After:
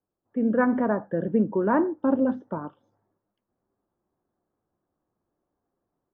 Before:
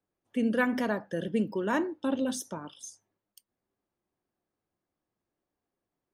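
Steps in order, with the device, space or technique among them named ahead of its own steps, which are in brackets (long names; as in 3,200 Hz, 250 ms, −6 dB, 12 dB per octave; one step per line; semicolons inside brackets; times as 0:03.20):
0:00.73–0:01.55: Chebyshev low-pass filter 12,000 Hz
action camera in a waterproof case (low-pass filter 1,400 Hz 24 dB per octave; automatic gain control gain up to 7 dB; AAC 48 kbit/s 24,000 Hz)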